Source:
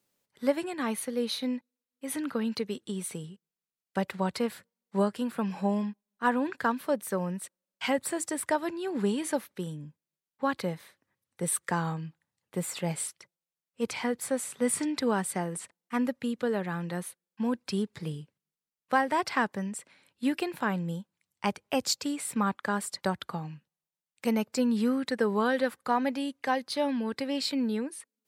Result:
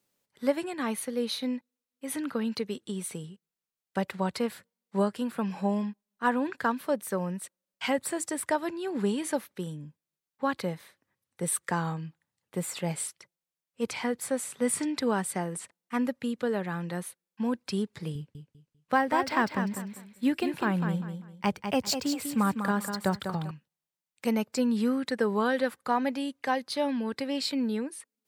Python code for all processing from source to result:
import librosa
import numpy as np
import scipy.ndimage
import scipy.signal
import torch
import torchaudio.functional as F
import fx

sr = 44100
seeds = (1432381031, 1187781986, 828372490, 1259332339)

y = fx.chain(x, sr, fx.low_shelf(hz=140.0, db=9.5),
    fx.echo_feedback(ms=198, feedback_pct=27, wet_db=-7.5),
    fx.resample_linear(factor=2), at=(18.15, 23.51))